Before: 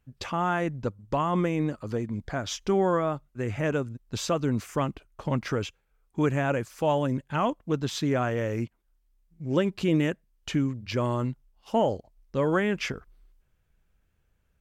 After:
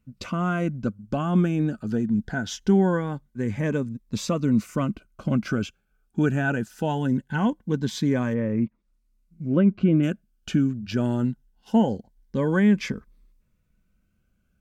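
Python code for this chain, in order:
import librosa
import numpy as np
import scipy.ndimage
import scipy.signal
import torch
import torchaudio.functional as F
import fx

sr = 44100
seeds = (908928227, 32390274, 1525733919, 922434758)

y = fx.small_body(x, sr, hz=(210.0, 1500.0), ring_ms=45, db=12)
y = fx.env_lowpass_down(y, sr, base_hz=1900.0, full_db=-21.5, at=(8.33, 10.02), fade=0.02)
y = fx.notch_cascade(y, sr, direction='rising', hz=0.22)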